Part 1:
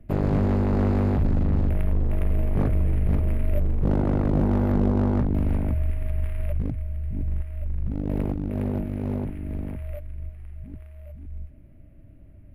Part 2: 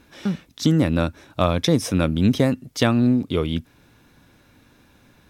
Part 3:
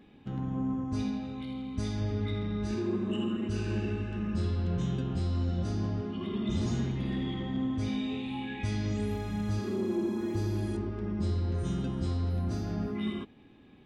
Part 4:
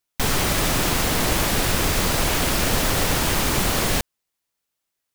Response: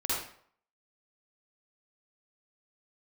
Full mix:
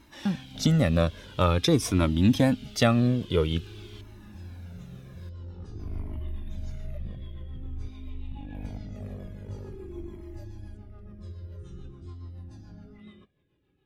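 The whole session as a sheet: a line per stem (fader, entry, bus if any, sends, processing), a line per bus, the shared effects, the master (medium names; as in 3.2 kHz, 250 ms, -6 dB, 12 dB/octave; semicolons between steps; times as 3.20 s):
-9.0 dB, 0.45 s, no send, vibrato 0.63 Hz 8.4 cents; auto duck -24 dB, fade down 1.85 s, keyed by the second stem
+2.0 dB, 0.00 s, no send, none
-7.0 dB, 0.00 s, no send, comb of notches 230 Hz; rotary cabinet horn 7 Hz
-15.0 dB, 0.00 s, no send, band-pass filter 3.3 kHz, Q 4.2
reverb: none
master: Shepard-style flanger falling 0.49 Hz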